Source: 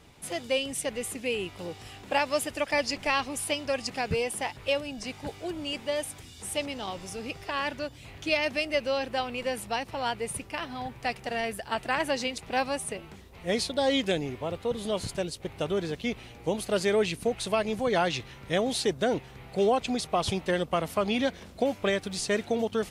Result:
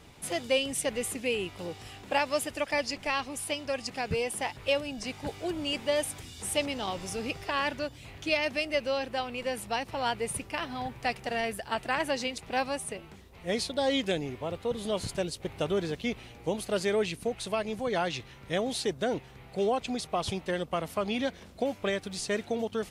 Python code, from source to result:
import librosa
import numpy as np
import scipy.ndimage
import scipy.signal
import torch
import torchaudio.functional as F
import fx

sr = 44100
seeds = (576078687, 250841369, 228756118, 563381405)

y = fx.rider(x, sr, range_db=10, speed_s=2.0)
y = y * 10.0 ** (-2.5 / 20.0)